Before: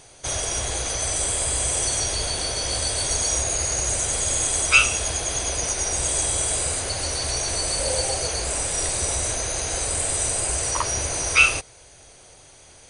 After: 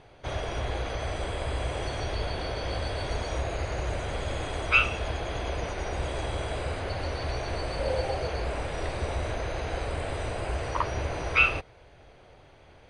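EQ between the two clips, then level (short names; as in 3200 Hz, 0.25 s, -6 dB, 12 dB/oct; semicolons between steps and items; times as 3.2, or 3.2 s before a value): air absorption 400 m; 0.0 dB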